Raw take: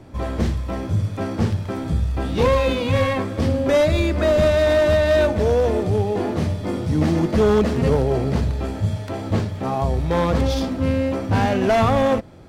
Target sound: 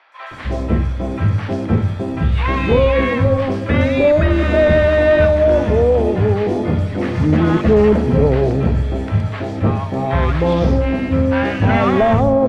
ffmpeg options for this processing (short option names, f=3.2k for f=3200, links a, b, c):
-filter_complex "[0:a]aemphasis=mode=reproduction:type=50fm,acrossover=split=3500[a][b];[b]acompressor=threshold=-45dB:ratio=4:attack=1:release=60[c];[a][c]amix=inputs=2:normalize=0,equalizer=f=2.1k:t=o:w=1.6:g=3.5,areverse,acompressor=mode=upward:threshold=-27dB:ratio=2.5,areverse,acrossover=split=930|4500[d][e][f];[f]adelay=120[g];[d]adelay=310[h];[h][e][g]amix=inputs=3:normalize=0,volume=4.5dB"